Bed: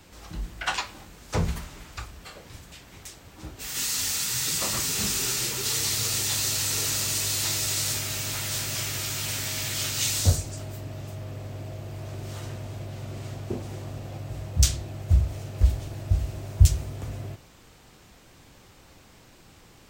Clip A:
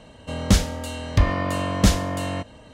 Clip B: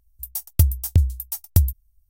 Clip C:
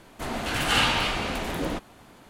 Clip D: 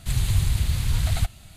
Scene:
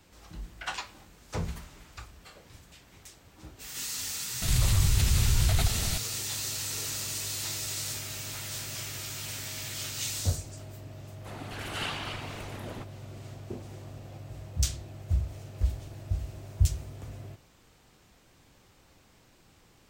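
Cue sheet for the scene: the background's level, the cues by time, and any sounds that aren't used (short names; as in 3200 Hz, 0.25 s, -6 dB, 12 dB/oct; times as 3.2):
bed -7.5 dB
4.42 add D -5.5 dB + fast leveller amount 70%
11.05 add C -12 dB + whisperiser
not used: A, B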